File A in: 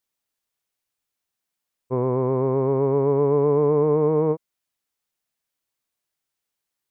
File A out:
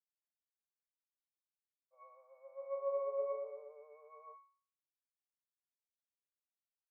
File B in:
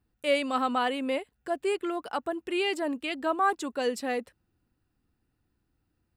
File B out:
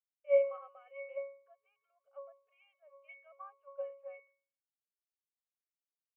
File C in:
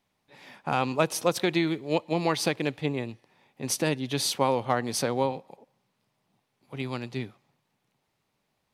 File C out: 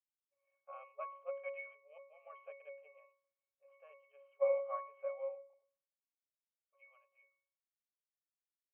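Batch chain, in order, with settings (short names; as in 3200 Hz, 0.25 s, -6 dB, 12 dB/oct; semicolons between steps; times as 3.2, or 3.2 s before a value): octave resonator C#, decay 0.56 s; FFT band-pass 430–3200 Hz; three-band expander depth 70%; gain +3 dB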